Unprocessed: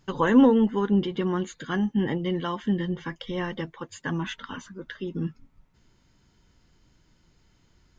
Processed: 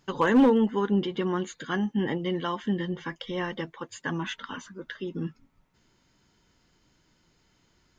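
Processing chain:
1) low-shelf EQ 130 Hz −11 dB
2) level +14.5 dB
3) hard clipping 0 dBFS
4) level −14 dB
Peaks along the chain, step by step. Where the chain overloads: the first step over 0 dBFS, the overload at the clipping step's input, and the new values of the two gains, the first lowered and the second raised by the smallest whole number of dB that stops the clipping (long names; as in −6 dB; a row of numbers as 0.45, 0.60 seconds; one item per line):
−9.5, +5.0, 0.0, −14.0 dBFS
step 2, 5.0 dB
step 2 +9.5 dB, step 4 −9 dB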